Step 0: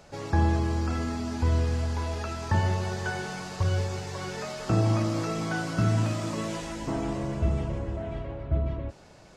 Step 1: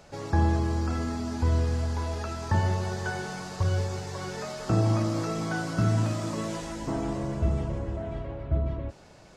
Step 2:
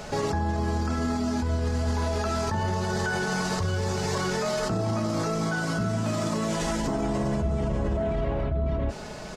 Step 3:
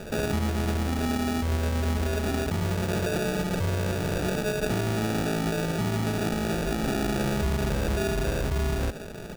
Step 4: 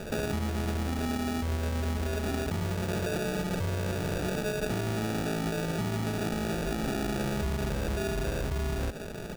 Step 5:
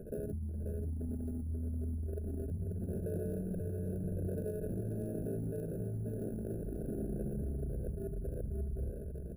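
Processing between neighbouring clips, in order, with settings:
dynamic EQ 2600 Hz, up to -4 dB, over -53 dBFS, Q 1.6
comb 4.7 ms, depth 42%; in parallel at +2 dB: negative-ratio compressor -35 dBFS; on the sum: limiter -22.5 dBFS, peak gain reduction 10 dB; gain +3.5 dB
sample-and-hold 42×
compressor 2.5:1, threshold -29 dBFS, peak gain reduction 5 dB
formant sharpening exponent 3; sample-rate reducer 11000 Hz, jitter 0%; tapped delay 0.536/0.589 s -5/-16.5 dB; gain -8 dB

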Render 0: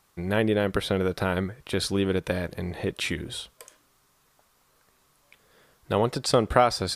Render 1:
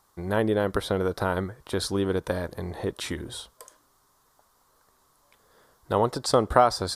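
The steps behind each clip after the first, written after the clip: fifteen-band EQ 160 Hz -5 dB, 1000 Hz +5 dB, 2500 Hz -11 dB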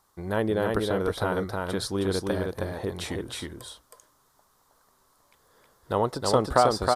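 echo 0.317 s -3 dB; gain -2 dB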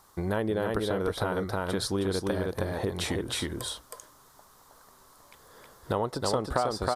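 compressor 3:1, threshold -37 dBFS, peak gain reduction 16.5 dB; gain +8 dB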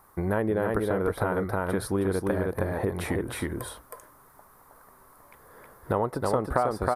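band shelf 4800 Hz -13.5 dB; gain +2.5 dB

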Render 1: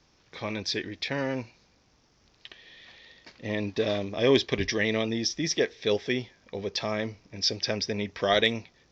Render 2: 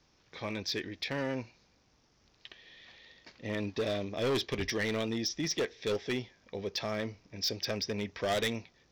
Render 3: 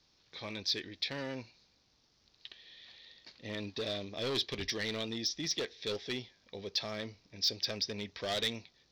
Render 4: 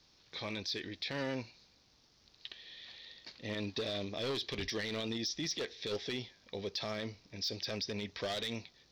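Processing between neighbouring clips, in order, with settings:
hard clip -22.5 dBFS, distortion -9 dB; gain -4 dB
bell 4100 Hz +11.5 dB 0.84 oct; gain -6 dB
limiter -32 dBFS, peak gain reduction 10.5 dB; gain +3.5 dB

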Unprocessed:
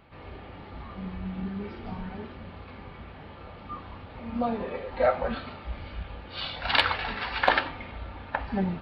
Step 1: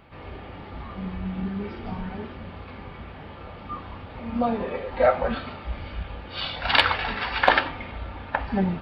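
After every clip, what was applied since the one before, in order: notch 4100 Hz, Q 19; gain +4 dB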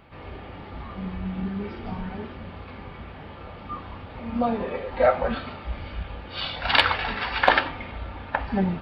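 nothing audible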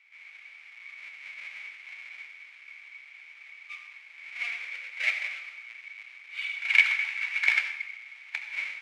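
half-waves squared off; ladder band-pass 2300 Hz, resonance 90%; reverb RT60 0.65 s, pre-delay 67 ms, DRR 8 dB; gain -2 dB

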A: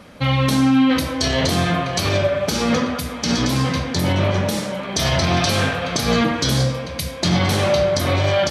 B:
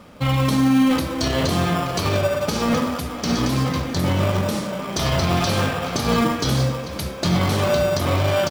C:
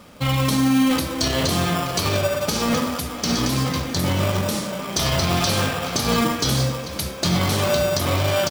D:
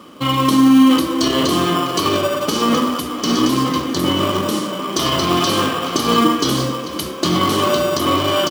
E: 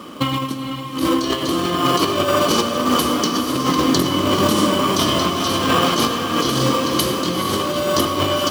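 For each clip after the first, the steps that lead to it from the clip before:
bell 1200 Hz +7.5 dB 0.22 oct; in parallel at -5 dB: sample-and-hold 21×; on the sum: frequency-shifting echo 0.438 s, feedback 64%, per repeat +68 Hz, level -19 dB; gain -5 dB
high shelf 3400 Hz +8 dB; gain -1.5 dB
HPF 180 Hz 6 dB/oct; small resonant body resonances 320/1100/3000 Hz, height 14 dB, ringing for 25 ms
negative-ratio compressor -20 dBFS, ratio -0.5; diffused feedback echo 0.457 s, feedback 49%, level -7 dB; on a send at -11 dB: reverb RT60 0.70 s, pre-delay 78 ms; on the sum: gain +1 dB

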